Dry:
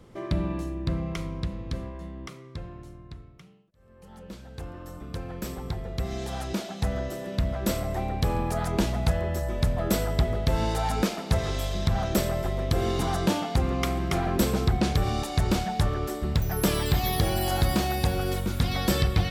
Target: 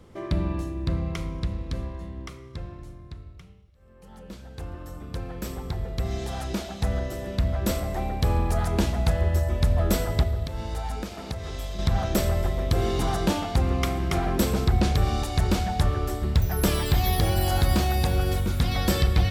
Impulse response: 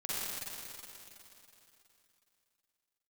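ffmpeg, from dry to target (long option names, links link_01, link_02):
-filter_complex "[0:a]asettb=1/sr,asplit=3[link_01][link_02][link_03];[link_01]atrim=end=10.234[link_04];[link_02]atrim=start=10.23:end=11.79,asetpts=PTS-STARTPTS,afade=type=in:duration=0.004:curve=qsin,afade=type=out:start_time=1.556:duration=0.004:curve=qsin,acompressor=threshold=-31dB:ratio=6[link_05];[link_03]atrim=start=11.786[link_06];[link_04][link_05]acrossfade=duration=0.004:curve1=hsin:curve2=qsin[link_07];[link_07][link_06]acrossfade=duration=0.004:curve1=qsin:curve2=hsin,asplit=2[link_08][link_09];[link_09]lowshelf=frequency=130:width_type=q:width=3:gain=12.5[link_10];[1:a]atrim=start_sample=2205,asetrate=70560,aresample=44100[link_11];[link_10][link_11]afir=irnorm=-1:irlink=0,volume=-15.5dB[link_12];[link_08][link_12]amix=inputs=2:normalize=0"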